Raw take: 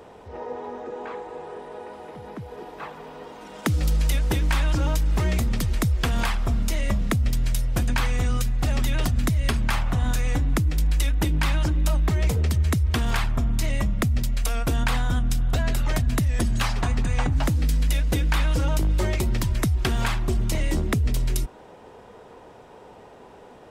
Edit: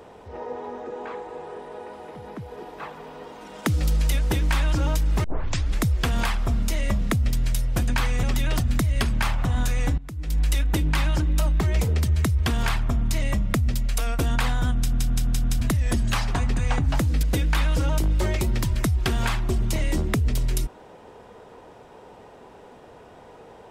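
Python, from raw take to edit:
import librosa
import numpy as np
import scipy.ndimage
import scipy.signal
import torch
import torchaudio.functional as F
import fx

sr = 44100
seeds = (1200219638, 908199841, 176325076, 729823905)

y = fx.edit(x, sr, fx.tape_start(start_s=5.24, length_s=0.58),
    fx.cut(start_s=8.23, length_s=0.48),
    fx.fade_in_from(start_s=10.46, length_s=0.41, curve='qua', floor_db=-19.5),
    fx.stutter_over(start_s=15.24, slice_s=0.17, count=5),
    fx.cut(start_s=17.71, length_s=0.31), tone=tone)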